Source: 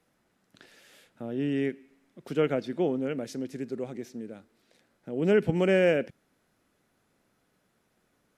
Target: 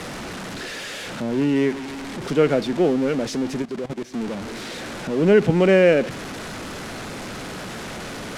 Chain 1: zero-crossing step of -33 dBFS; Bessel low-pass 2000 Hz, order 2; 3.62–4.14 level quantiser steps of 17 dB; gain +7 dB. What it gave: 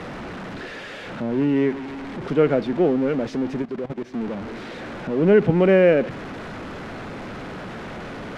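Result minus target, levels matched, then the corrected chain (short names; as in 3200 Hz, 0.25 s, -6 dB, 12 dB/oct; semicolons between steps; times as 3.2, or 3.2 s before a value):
8000 Hz band -17.0 dB
zero-crossing step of -33 dBFS; Bessel low-pass 6300 Hz, order 2; 3.62–4.14 level quantiser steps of 17 dB; gain +7 dB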